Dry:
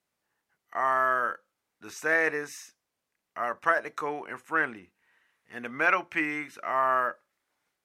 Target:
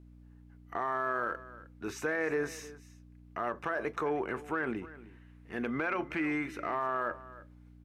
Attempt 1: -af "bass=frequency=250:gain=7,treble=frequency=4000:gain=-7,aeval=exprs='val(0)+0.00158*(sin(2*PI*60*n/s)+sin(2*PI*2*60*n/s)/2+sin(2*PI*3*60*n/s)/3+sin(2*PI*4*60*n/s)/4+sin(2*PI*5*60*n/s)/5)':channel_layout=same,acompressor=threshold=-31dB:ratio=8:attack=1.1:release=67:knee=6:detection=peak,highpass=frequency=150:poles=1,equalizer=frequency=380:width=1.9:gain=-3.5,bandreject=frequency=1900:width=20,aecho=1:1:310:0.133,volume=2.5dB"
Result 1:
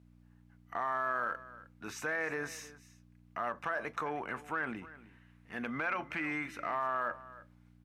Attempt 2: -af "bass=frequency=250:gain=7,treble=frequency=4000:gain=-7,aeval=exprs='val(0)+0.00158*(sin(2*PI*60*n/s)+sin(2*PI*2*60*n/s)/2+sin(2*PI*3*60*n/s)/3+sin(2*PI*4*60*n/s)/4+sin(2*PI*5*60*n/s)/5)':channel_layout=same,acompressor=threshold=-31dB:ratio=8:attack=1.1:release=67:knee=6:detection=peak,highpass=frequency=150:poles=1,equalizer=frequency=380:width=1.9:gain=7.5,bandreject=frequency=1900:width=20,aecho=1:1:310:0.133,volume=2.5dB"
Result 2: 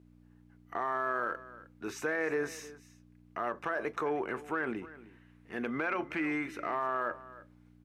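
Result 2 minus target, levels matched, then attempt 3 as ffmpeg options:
125 Hz band −3.5 dB
-af "bass=frequency=250:gain=7,treble=frequency=4000:gain=-7,aeval=exprs='val(0)+0.00158*(sin(2*PI*60*n/s)+sin(2*PI*2*60*n/s)/2+sin(2*PI*3*60*n/s)/3+sin(2*PI*4*60*n/s)/4+sin(2*PI*5*60*n/s)/5)':channel_layout=same,acompressor=threshold=-31dB:ratio=8:attack=1.1:release=67:knee=6:detection=peak,equalizer=frequency=380:width=1.9:gain=7.5,bandreject=frequency=1900:width=20,aecho=1:1:310:0.133,volume=2.5dB"

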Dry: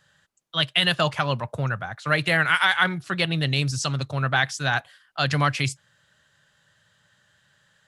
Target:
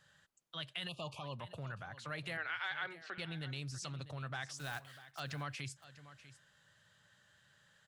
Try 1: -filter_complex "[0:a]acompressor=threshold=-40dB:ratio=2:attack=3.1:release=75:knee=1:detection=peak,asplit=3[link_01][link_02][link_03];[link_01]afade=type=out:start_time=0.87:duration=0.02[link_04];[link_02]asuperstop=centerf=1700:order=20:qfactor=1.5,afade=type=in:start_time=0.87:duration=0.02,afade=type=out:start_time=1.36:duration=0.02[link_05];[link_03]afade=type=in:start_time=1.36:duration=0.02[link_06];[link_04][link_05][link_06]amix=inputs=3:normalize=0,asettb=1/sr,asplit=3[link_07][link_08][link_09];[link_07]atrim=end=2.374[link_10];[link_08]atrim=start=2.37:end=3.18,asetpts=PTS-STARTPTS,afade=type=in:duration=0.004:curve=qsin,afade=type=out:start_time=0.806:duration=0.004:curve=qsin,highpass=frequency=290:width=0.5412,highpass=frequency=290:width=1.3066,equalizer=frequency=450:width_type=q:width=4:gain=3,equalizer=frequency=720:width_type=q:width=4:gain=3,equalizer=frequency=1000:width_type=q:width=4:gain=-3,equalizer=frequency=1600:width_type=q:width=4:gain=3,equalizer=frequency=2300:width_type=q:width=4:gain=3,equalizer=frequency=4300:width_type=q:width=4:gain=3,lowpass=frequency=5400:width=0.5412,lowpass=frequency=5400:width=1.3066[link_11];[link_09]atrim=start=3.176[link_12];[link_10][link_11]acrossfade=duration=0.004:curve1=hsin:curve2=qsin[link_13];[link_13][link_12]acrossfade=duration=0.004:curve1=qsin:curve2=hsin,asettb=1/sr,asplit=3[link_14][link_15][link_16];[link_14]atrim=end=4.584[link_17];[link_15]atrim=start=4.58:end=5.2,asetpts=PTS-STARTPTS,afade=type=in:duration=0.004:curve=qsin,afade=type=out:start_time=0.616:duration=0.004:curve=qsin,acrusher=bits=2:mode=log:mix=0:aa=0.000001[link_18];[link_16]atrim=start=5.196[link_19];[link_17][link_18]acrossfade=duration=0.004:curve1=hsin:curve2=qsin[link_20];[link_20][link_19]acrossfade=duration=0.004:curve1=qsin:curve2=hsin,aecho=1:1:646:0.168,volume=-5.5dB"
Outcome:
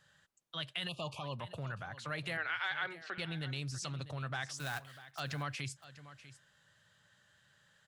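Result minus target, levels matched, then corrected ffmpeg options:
downward compressor: peak gain reduction −3.5 dB
-filter_complex "[0:a]acompressor=threshold=-46.5dB:ratio=2:attack=3.1:release=75:knee=1:detection=peak,asplit=3[link_01][link_02][link_03];[link_01]afade=type=out:start_time=0.87:duration=0.02[link_04];[link_02]asuperstop=centerf=1700:order=20:qfactor=1.5,afade=type=in:start_time=0.87:duration=0.02,afade=type=out:start_time=1.36:duration=0.02[link_05];[link_03]afade=type=in:start_time=1.36:duration=0.02[link_06];[link_04][link_05][link_06]amix=inputs=3:normalize=0,asettb=1/sr,asplit=3[link_07][link_08][link_09];[link_07]atrim=end=2.374[link_10];[link_08]atrim=start=2.37:end=3.18,asetpts=PTS-STARTPTS,afade=type=in:duration=0.004:curve=qsin,afade=type=out:start_time=0.806:duration=0.004:curve=qsin,highpass=frequency=290:width=0.5412,highpass=frequency=290:width=1.3066,equalizer=frequency=450:width_type=q:width=4:gain=3,equalizer=frequency=720:width_type=q:width=4:gain=3,equalizer=frequency=1000:width_type=q:width=4:gain=-3,equalizer=frequency=1600:width_type=q:width=4:gain=3,equalizer=frequency=2300:width_type=q:width=4:gain=3,equalizer=frequency=4300:width_type=q:width=4:gain=3,lowpass=frequency=5400:width=0.5412,lowpass=frequency=5400:width=1.3066[link_11];[link_09]atrim=start=3.176[link_12];[link_10][link_11]acrossfade=duration=0.004:curve1=hsin:curve2=qsin[link_13];[link_13][link_12]acrossfade=duration=0.004:curve1=qsin:curve2=hsin,asettb=1/sr,asplit=3[link_14][link_15][link_16];[link_14]atrim=end=4.584[link_17];[link_15]atrim=start=4.58:end=5.2,asetpts=PTS-STARTPTS,afade=type=in:duration=0.004:curve=qsin,afade=type=out:start_time=0.616:duration=0.004:curve=qsin,acrusher=bits=2:mode=log:mix=0:aa=0.000001[link_18];[link_16]atrim=start=5.196[link_19];[link_17][link_18]acrossfade=duration=0.004:curve1=hsin:curve2=qsin[link_20];[link_20][link_19]acrossfade=duration=0.004:curve1=qsin:curve2=hsin,aecho=1:1:646:0.168,volume=-5.5dB"

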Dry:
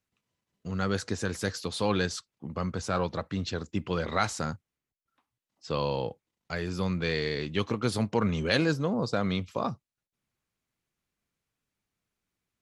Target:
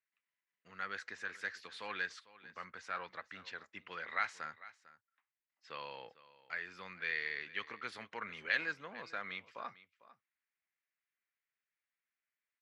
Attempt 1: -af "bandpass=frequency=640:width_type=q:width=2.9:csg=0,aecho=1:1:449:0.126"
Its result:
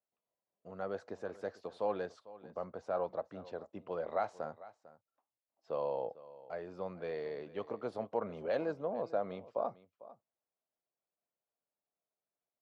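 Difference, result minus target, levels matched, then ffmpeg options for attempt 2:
2,000 Hz band −16.0 dB
-af "bandpass=frequency=1900:width_type=q:width=2.9:csg=0,aecho=1:1:449:0.126"

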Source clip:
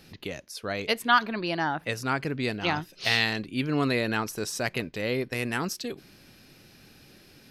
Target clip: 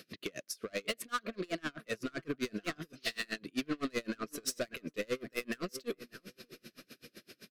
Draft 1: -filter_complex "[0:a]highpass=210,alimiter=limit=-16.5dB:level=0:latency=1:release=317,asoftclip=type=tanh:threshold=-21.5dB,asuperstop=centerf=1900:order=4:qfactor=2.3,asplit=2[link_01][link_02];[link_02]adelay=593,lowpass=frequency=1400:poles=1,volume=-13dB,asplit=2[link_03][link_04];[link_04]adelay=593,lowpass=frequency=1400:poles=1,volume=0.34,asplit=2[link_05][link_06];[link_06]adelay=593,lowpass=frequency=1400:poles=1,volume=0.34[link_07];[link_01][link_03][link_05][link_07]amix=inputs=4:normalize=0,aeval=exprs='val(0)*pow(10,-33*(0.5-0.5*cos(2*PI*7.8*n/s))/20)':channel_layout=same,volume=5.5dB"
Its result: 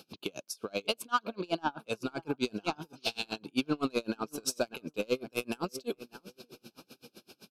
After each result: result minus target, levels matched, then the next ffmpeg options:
soft clipping: distortion −9 dB; 2,000 Hz band −3.5 dB
-filter_complex "[0:a]highpass=210,alimiter=limit=-16.5dB:level=0:latency=1:release=317,asoftclip=type=tanh:threshold=-32dB,asuperstop=centerf=1900:order=4:qfactor=2.3,asplit=2[link_01][link_02];[link_02]adelay=593,lowpass=frequency=1400:poles=1,volume=-13dB,asplit=2[link_03][link_04];[link_04]adelay=593,lowpass=frequency=1400:poles=1,volume=0.34,asplit=2[link_05][link_06];[link_06]adelay=593,lowpass=frequency=1400:poles=1,volume=0.34[link_07];[link_01][link_03][link_05][link_07]amix=inputs=4:normalize=0,aeval=exprs='val(0)*pow(10,-33*(0.5-0.5*cos(2*PI*7.8*n/s))/20)':channel_layout=same,volume=5.5dB"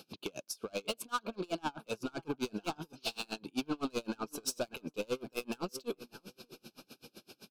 2,000 Hz band −4.5 dB
-filter_complex "[0:a]highpass=210,alimiter=limit=-16.5dB:level=0:latency=1:release=317,asoftclip=type=tanh:threshold=-32dB,asuperstop=centerf=860:order=4:qfactor=2.3,asplit=2[link_01][link_02];[link_02]adelay=593,lowpass=frequency=1400:poles=1,volume=-13dB,asplit=2[link_03][link_04];[link_04]adelay=593,lowpass=frequency=1400:poles=1,volume=0.34,asplit=2[link_05][link_06];[link_06]adelay=593,lowpass=frequency=1400:poles=1,volume=0.34[link_07];[link_01][link_03][link_05][link_07]amix=inputs=4:normalize=0,aeval=exprs='val(0)*pow(10,-33*(0.5-0.5*cos(2*PI*7.8*n/s))/20)':channel_layout=same,volume=5.5dB"

